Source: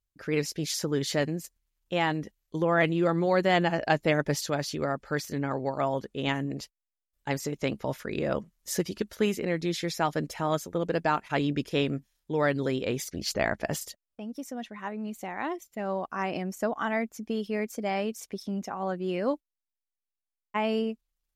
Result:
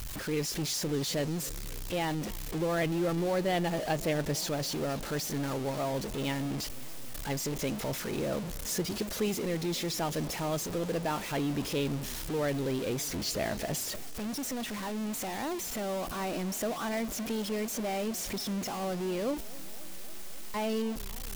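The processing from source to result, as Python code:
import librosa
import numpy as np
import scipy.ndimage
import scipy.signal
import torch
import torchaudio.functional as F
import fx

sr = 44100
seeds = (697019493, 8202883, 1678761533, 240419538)

y = x + 0.5 * 10.0 ** (-24.5 / 20.0) * np.sign(x)
y = fx.dynamic_eq(y, sr, hz=1500.0, q=0.98, threshold_db=-37.0, ratio=4.0, max_db=-5)
y = fx.echo_warbled(y, sr, ms=269, feedback_pct=77, rate_hz=2.8, cents=207, wet_db=-21)
y = y * 10.0 ** (-7.0 / 20.0)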